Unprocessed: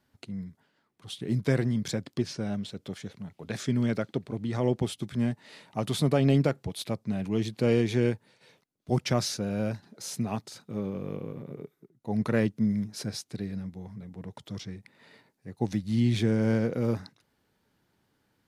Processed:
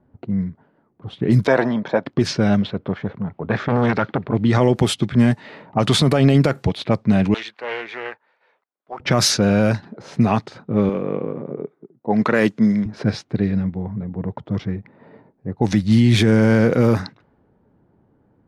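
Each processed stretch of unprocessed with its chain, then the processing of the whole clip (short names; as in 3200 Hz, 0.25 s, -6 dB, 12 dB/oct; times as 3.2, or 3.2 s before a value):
1.47–2.06 speaker cabinet 330–5300 Hz, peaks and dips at 370 Hz -3 dB, 630 Hz +9 dB, 910 Hz +10 dB, 2000 Hz -3 dB, 2900 Hz -5 dB, 4700 Hz -9 dB + notch 2100 Hz, Q 19
2.62–4.34 LPF 5000 Hz + bell 1100 Hz +4.5 dB 1.3 oct + core saturation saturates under 780 Hz
7.34–9 Chebyshev high-pass 1400 Hz + Doppler distortion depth 0.19 ms
10.89–12.86 Bessel high-pass 270 Hz + bell 6900 Hz +5 dB 0.22 oct
whole clip: low-pass opened by the level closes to 700 Hz, open at -23.5 dBFS; dynamic EQ 1400 Hz, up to +5 dB, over -43 dBFS, Q 0.83; maximiser +20 dB; gain -5 dB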